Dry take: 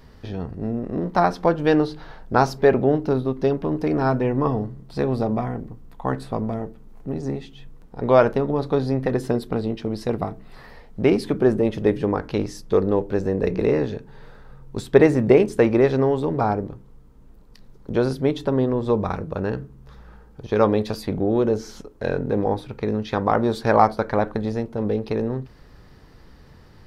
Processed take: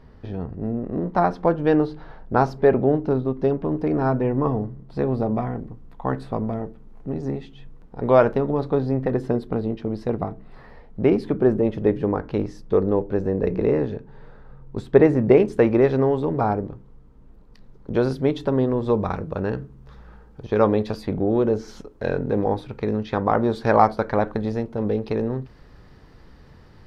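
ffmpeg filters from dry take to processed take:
ffmpeg -i in.wav -af "asetnsamples=nb_out_samples=441:pad=0,asendcmd='5.36 lowpass f 2600;8.7 lowpass f 1400;15.31 lowpass f 2500;17.95 lowpass f 4700;20.48 lowpass f 2800;21.68 lowpass f 4900;23.03 lowpass f 2600;23.61 lowpass f 4900',lowpass=frequency=1400:poles=1" out.wav

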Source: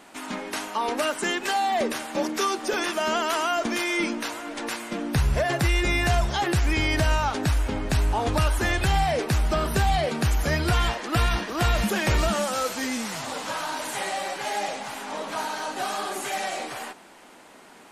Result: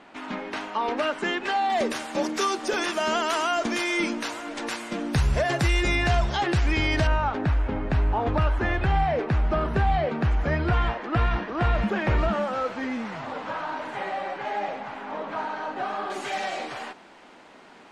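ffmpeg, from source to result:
ffmpeg -i in.wav -af "asetnsamples=nb_out_samples=441:pad=0,asendcmd='1.7 lowpass f 8300;5.95 lowpass f 4900;7.07 lowpass f 2000;16.1 lowpass f 4700',lowpass=3300" out.wav

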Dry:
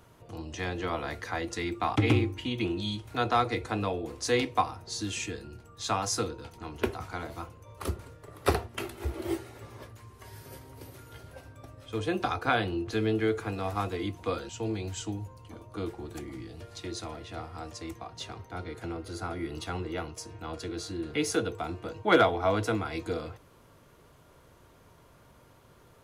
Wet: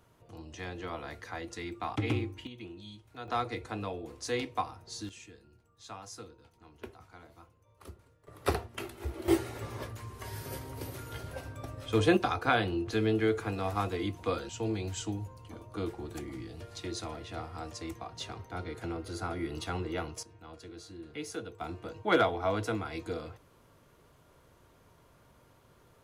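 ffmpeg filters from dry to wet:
ffmpeg -i in.wav -af "asetnsamples=nb_out_samples=441:pad=0,asendcmd='2.47 volume volume -15dB;3.28 volume volume -6.5dB;5.09 volume volume -16dB;8.27 volume volume -4dB;9.28 volume volume 6dB;12.17 volume volume -0.5dB;20.23 volume volume -11dB;21.61 volume volume -4dB',volume=-7dB" out.wav

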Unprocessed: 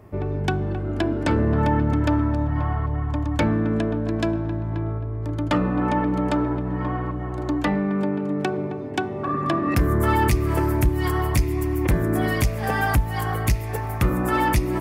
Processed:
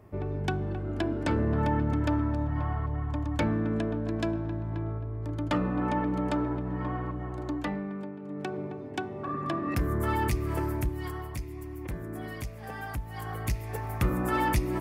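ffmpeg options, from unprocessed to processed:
ffmpeg -i in.wav -af "volume=12dB,afade=type=out:start_time=7.24:duration=0.93:silence=0.298538,afade=type=in:start_time=8.17:duration=0.41:silence=0.375837,afade=type=out:start_time=10.63:duration=0.66:silence=0.421697,afade=type=in:start_time=12.93:duration=1.07:silence=0.316228" out.wav

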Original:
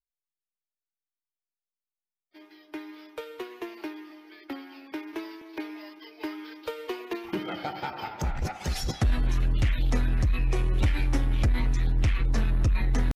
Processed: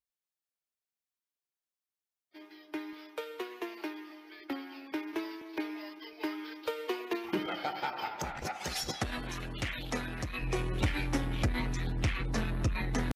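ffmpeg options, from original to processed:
ffmpeg -i in.wav -af "asetnsamples=nb_out_samples=441:pad=0,asendcmd='2.93 highpass f 300;4.4 highpass f 84;6.13 highpass f 180;7.46 highpass f 440;10.42 highpass f 160',highpass=frequency=80:poles=1" out.wav

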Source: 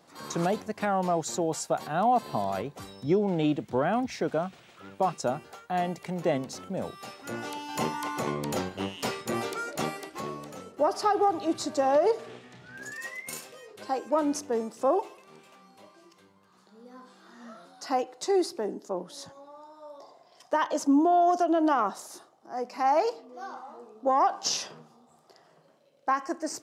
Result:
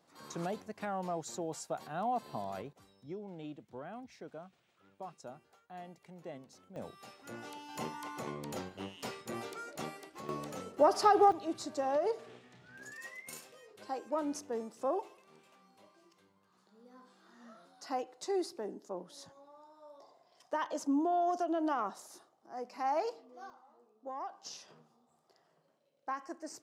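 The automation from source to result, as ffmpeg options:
ffmpeg -i in.wav -af "asetnsamples=nb_out_samples=441:pad=0,asendcmd='2.73 volume volume -19.5dB;6.76 volume volume -10.5dB;10.29 volume volume -0.5dB;11.32 volume volume -9dB;23.5 volume volume -18.5dB;24.68 volume volume -12dB',volume=-10.5dB" out.wav

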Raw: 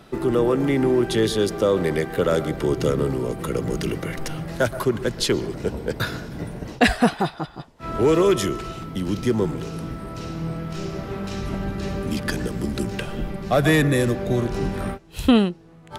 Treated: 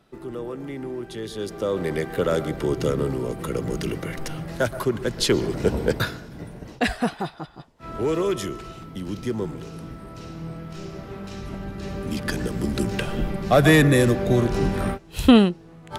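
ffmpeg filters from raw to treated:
ffmpeg -i in.wav -af "volume=14dB,afade=type=in:start_time=1.24:duration=0.86:silence=0.281838,afade=type=in:start_time=5.05:duration=0.8:silence=0.421697,afade=type=out:start_time=5.85:duration=0.3:silence=0.266073,afade=type=in:start_time=11.72:duration=1.35:silence=0.375837" out.wav

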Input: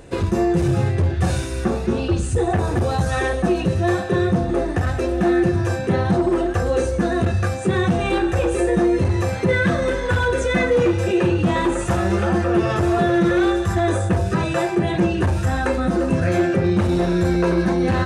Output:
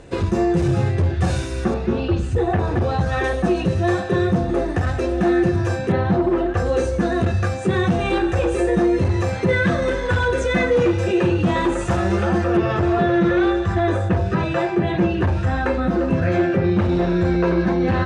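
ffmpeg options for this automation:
ffmpeg -i in.wav -af "asetnsamples=nb_out_samples=441:pad=0,asendcmd='1.74 lowpass f 3900;3.24 lowpass f 7700;5.92 lowpass f 3300;6.57 lowpass f 7300;12.57 lowpass f 3800',lowpass=7800" out.wav

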